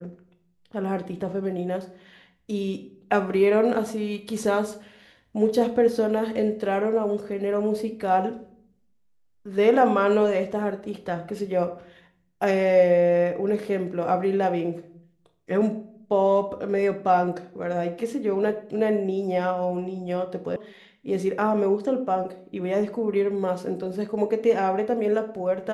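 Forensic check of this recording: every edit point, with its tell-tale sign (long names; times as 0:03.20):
0:20.56: cut off before it has died away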